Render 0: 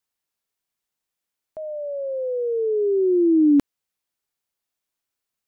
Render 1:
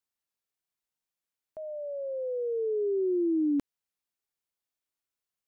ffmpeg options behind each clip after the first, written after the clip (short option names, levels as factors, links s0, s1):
-af "acompressor=threshold=0.126:ratio=4,volume=0.447"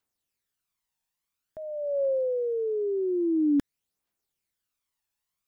-af "aphaser=in_gain=1:out_gain=1:delay=1.2:decay=0.51:speed=0.49:type=triangular,volume=1.5"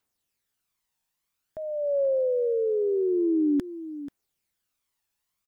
-af "acompressor=threshold=0.0562:ratio=4,aecho=1:1:486:0.211,volume=1.5"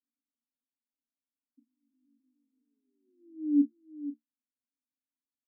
-filter_complex "[0:a]asuperpass=centerf=260:order=12:qfactor=3.7,asplit=2[s0][s1];[s1]adelay=35,volume=0.355[s2];[s0][s2]amix=inputs=2:normalize=0"